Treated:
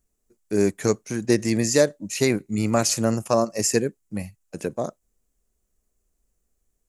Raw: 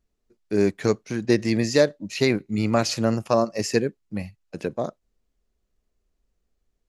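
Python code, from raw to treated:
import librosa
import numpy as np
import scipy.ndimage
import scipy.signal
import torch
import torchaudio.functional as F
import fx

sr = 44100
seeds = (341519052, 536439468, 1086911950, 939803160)

y = fx.high_shelf_res(x, sr, hz=5800.0, db=10.5, q=1.5)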